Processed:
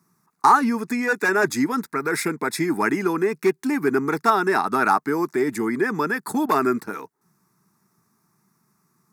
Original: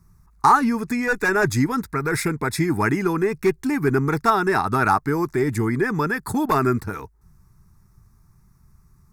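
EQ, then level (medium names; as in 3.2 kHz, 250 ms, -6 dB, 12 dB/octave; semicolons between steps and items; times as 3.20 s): high-pass 200 Hz 24 dB/octave; 0.0 dB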